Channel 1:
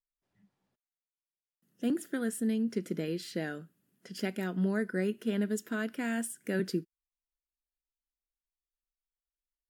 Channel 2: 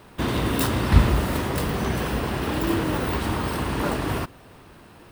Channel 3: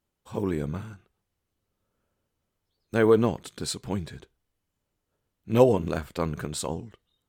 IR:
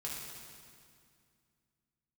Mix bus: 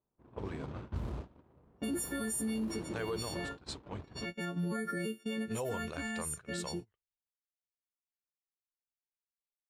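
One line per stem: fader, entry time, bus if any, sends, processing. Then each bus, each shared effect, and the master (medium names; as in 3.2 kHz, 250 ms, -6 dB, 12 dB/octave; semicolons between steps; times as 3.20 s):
+2.0 dB, 0.00 s, no send, partials quantised in pitch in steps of 4 st; peak limiter -23 dBFS, peak gain reduction 6.5 dB; auto duck -8 dB, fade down 0.55 s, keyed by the third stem
-18.0 dB, 0.00 s, no send, median filter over 25 samples; hum notches 50/100/150/200/250/300 Hz
-7.5 dB, 0.00 s, no send, peaking EQ 240 Hz -13 dB 1.5 oct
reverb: none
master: gate -40 dBFS, range -20 dB; level-controlled noise filter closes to 1.7 kHz, open at -30.5 dBFS; peak limiter -28 dBFS, peak gain reduction 10.5 dB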